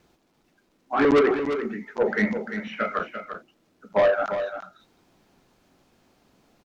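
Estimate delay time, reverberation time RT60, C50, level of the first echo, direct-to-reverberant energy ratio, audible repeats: 345 ms, no reverb, no reverb, -9.0 dB, no reverb, 1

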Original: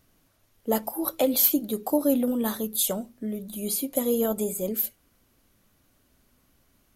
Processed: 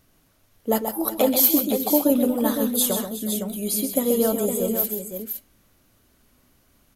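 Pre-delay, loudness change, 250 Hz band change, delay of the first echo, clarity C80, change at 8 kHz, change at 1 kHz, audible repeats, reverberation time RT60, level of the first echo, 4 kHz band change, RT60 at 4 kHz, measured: no reverb, +4.0 dB, +4.5 dB, 132 ms, no reverb, +4.5 dB, +4.5 dB, 3, no reverb, -7.5 dB, +4.5 dB, no reverb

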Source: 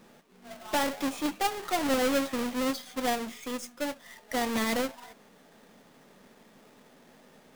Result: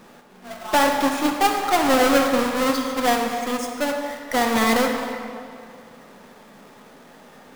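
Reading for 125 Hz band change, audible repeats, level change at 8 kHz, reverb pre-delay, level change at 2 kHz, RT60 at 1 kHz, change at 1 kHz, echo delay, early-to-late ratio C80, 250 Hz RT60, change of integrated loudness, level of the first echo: +8.5 dB, no echo, +8.0 dB, 39 ms, +10.5 dB, 2.4 s, +12.0 dB, no echo, 5.0 dB, 2.3 s, +9.5 dB, no echo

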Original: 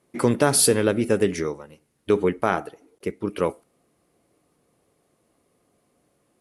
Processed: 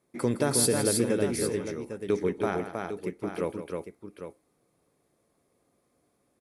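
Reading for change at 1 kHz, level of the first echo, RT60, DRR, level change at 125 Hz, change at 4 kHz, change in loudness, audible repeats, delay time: -8.0 dB, -11.0 dB, no reverb, no reverb, -4.5 dB, -5.0 dB, -6.0 dB, 3, 162 ms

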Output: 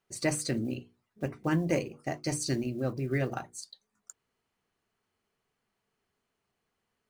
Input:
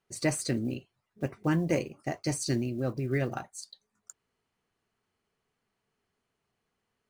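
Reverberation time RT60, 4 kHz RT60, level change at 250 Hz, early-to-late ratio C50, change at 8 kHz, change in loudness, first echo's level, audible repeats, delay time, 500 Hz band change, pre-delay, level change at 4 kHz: no reverb, no reverb, -1.0 dB, no reverb, 0.0 dB, -1.0 dB, no echo, no echo, no echo, -0.5 dB, no reverb, 0.0 dB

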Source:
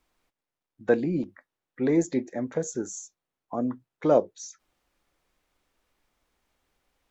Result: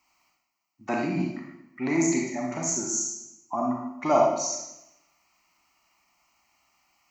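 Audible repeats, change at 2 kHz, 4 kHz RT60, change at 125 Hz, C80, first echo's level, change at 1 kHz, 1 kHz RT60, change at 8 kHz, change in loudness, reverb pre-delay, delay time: no echo, +4.0 dB, 0.80 s, 0.0 dB, 4.5 dB, no echo, +8.0 dB, 0.85 s, no reading, +0.5 dB, 30 ms, no echo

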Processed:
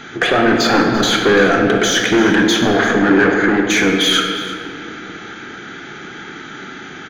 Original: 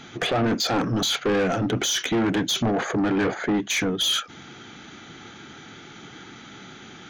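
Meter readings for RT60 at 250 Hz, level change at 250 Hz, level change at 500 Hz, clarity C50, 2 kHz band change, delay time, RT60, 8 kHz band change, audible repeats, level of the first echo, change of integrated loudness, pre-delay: 3.4 s, +9.5 dB, +11.0 dB, 3.0 dB, +14.5 dB, 341 ms, 2.7 s, +5.5 dB, 1, -15.0 dB, +9.5 dB, 20 ms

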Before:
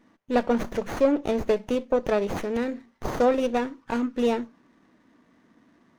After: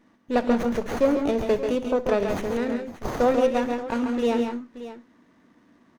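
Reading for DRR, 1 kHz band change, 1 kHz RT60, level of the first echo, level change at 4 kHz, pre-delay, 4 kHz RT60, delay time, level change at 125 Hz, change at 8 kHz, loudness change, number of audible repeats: no reverb, +1.5 dB, no reverb, -17.5 dB, +1.5 dB, no reverb, no reverb, 64 ms, +1.5 dB, no reading, +1.5 dB, 3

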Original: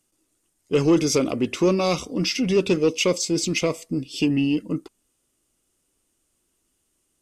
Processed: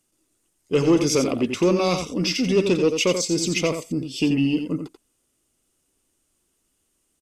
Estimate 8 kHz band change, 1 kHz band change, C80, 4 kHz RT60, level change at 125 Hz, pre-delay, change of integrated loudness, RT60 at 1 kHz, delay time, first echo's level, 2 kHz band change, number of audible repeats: +0.5 dB, +1.0 dB, no reverb, no reverb, +0.5 dB, no reverb, +0.5 dB, no reverb, 87 ms, -7.5 dB, +0.5 dB, 1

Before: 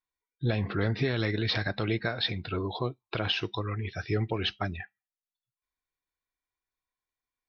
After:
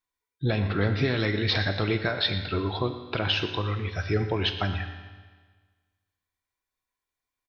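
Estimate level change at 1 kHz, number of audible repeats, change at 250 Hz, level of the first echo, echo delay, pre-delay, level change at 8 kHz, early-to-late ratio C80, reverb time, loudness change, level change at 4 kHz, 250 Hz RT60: +4.0 dB, 1, +3.0 dB, -15.5 dB, 119 ms, 4 ms, no reading, 9.5 dB, 1.5 s, +3.5 dB, +4.0 dB, 1.5 s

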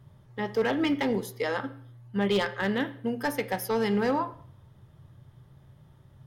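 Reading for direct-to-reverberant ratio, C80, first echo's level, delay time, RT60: 10.5 dB, 18.5 dB, no echo, no echo, 0.55 s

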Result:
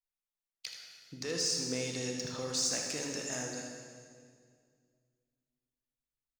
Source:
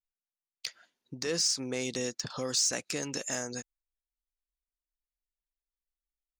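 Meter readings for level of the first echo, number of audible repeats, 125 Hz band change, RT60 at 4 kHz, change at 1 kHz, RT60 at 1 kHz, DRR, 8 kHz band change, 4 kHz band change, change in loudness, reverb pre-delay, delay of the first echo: -8.0 dB, 1, -0.5 dB, 1.8 s, -2.5 dB, 1.9 s, 0.5 dB, -3.0 dB, -2.5 dB, -3.0 dB, 21 ms, 79 ms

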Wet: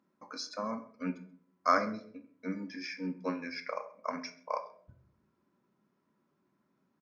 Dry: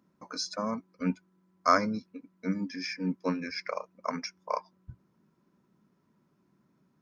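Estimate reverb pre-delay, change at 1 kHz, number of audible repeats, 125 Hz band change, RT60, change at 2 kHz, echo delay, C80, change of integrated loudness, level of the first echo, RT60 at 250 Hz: 4 ms, -3.0 dB, 1, -8.5 dB, 0.55 s, -2.5 dB, 132 ms, 16.5 dB, -4.0 dB, -23.5 dB, 0.70 s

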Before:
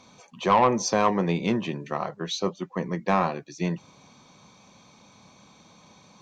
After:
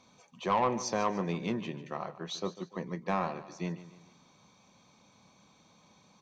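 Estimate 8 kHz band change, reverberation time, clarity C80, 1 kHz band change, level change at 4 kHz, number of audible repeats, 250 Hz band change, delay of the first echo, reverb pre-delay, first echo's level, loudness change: -8.5 dB, no reverb, no reverb, -8.5 dB, -8.5 dB, 3, -8.5 dB, 147 ms, no reverb, -15.0 dB, -8.5 dB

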